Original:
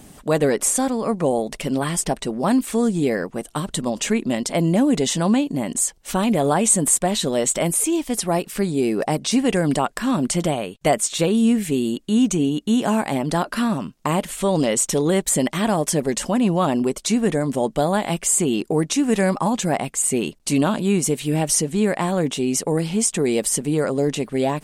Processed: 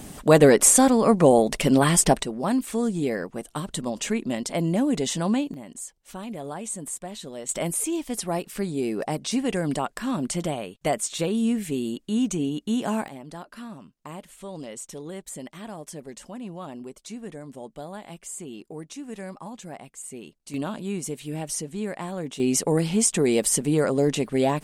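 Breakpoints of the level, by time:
+4 dB
from 0:02.23 −5.5 dB
from 0:05.54 −16 dB
from 0:07.49 −6.5 dB
from 0:13.08 −18 dB
from 0:20.54 −11 dB
from 0:22.40 −1 dB

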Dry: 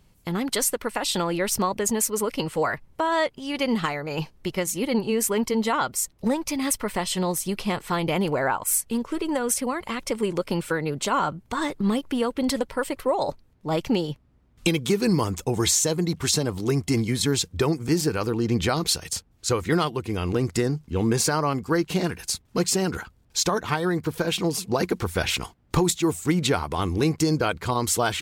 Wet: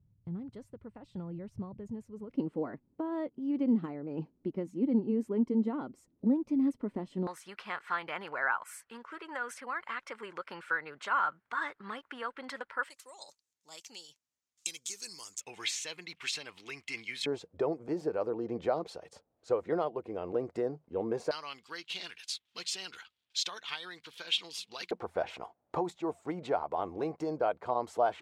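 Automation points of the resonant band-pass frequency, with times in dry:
resonant band-pass, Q 2.8
110 Hz
from 0:02.31 270 Hz
from 0:07.27 1,500 Hz
from 0:12.90 6,800 Hz
from 0:15.41 2,500 Hz
from 0:17.26 590 Hz
from 0:21.31 3,300 Hz
from 0:24.91 670 Hz

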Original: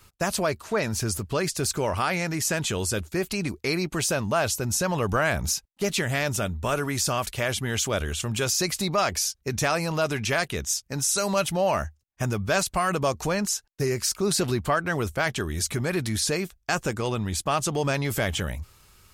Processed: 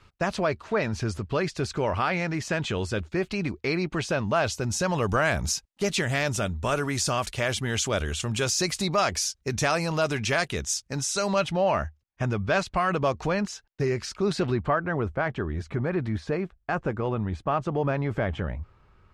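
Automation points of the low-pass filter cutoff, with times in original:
0:04.12 3,500 Hz
0:05.04 8,200 Hz
0:10.81 8,200 Hz
0:11.60 3,400 Hz
0:14.30 3,400 Hz
0:14.83 1,500 Hz

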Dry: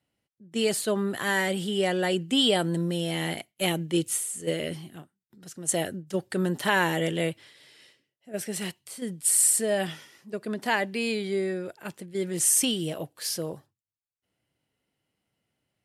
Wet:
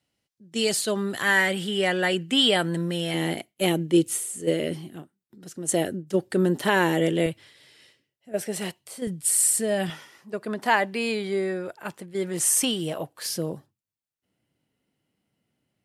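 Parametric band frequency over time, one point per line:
parametric band +7 dB 1.6 octaves
5,300 Hz
from 0:01.22 1,800 Hz
from 0:03.14 330 Hz
from 0:07.26 72 Hz
from 0:08.34 620 Hz
from 0:09.07 120 Hz
from 0:09.90 1,000 Hz
from 0:13.26 220 Hz

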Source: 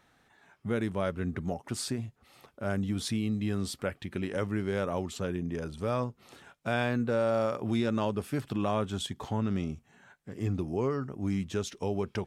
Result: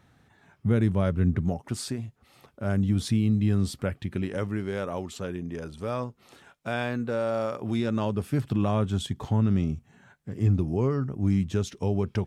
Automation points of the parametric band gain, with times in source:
parametric band 100 Hz 2.6 octaves
0:01.30 +13.5 dB
0:01.98 +1.5 dB
0:02.95 +10.5 dB
0:03.97 +10.5 dB
0:04.78 −1 dB
0:07.47 −1 dB
0:08.39 +10 dB

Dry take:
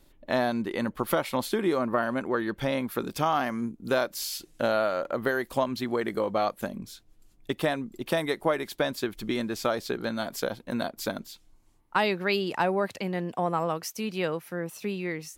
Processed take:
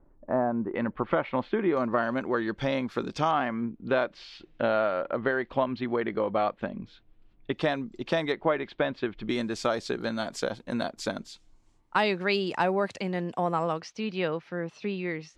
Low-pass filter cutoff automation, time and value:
low-pass filter 24 dB per octave
1,300 Hz
from 0:00.75 2,600 Hz
from 0:01.77 6,100 Hz
from 0:03.31 3,300 Hz
from 0:07.54 5,800 Hz
from 0:08.32 3,300 Hz
from 0:09.29 8,200 Hz
from 0:13.80 4,600 Hz

